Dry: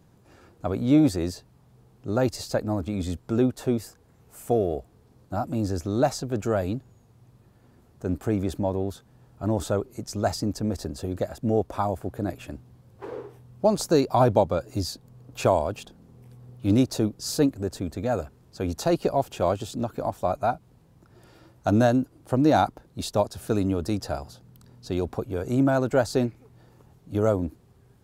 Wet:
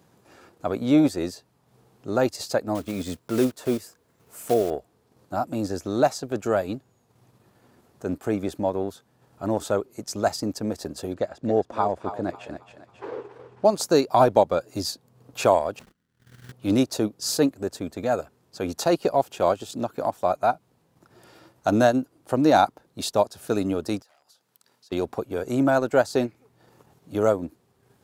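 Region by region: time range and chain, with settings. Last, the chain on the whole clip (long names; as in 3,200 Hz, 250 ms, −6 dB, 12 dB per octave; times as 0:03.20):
0:02.75–0:04.72: one scale factor per block 5 bits + notch filter 790 Hz, Q 9.7
0:11.14–0:13.65: high-frequency loss of the air 84 metres + feedback echo with a high-pass in the loop 272 ms, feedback 45%, high-pass 570 Hz, level −8 dB
0:15.79–0:16.52: noise gate −47 dBFS, range −25 dB + spectral tilt −3.5 dB per octave + sample-rate reduction 1,700 Hz, jitter 20%
0:24.02–0:24.92: hard clipping −32.5 dBFS + high-pass filter 1,400 Hz 6 dB per octave + downward compressor 4 to 1, threshold −58 dBFS
whole clip: high-pass filter 340 Hz 6 dB per octave; transient designer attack −1 dB, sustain −6 dB; level +4.5 dB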